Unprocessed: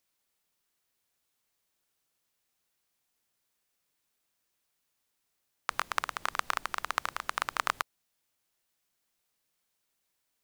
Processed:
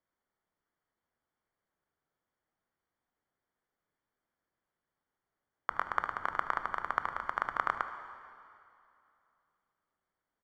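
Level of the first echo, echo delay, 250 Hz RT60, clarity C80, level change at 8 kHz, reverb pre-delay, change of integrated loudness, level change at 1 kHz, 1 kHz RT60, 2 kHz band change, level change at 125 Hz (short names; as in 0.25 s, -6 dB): -16.5 dB, 75 ms, 2.7 s, 10.5 dB, under -20 dB, 7 ms, -1.0 dB, +0.5 dB, 2.6 s, -2.0 dB, +1.0 dB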